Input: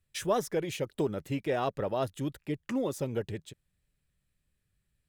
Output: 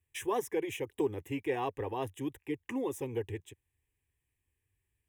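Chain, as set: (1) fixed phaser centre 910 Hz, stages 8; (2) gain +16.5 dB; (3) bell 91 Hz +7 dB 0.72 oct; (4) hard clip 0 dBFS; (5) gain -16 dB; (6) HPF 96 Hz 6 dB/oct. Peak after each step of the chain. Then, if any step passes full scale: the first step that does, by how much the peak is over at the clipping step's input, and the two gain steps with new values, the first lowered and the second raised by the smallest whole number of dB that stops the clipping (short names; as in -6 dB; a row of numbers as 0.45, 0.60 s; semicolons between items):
-20.0, -3.5, -3.5, -3.5, -19.5, -20.0 dBFS; no overload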